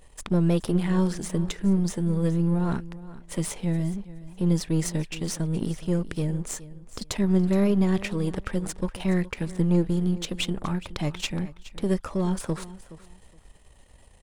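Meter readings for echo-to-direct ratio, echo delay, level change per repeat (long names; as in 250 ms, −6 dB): −17.0 dB, 420 ms, −14.0 dB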